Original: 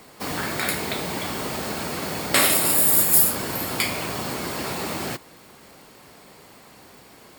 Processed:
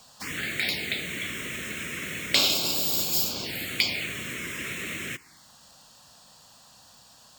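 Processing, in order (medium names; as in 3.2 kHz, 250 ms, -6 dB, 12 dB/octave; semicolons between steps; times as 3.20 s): touch-sensitive phaser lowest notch 340 Hz, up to 1.9 kHz, full sweep at -19.5 dBFS; high-order bell 3.7 kHz +11 dB 2.4 oct; trim -7 dB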